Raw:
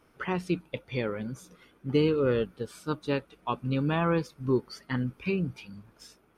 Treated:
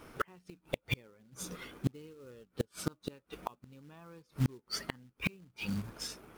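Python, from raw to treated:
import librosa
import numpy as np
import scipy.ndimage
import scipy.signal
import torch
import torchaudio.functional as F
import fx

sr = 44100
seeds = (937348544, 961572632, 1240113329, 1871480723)

y = fx.quant_float(x, sr, bits=2)
y = fx.gate_flip(y, sr, shuts_db=-28.0, range_db=-37)
y = y * 10.0 ** (10.0 / 20.0)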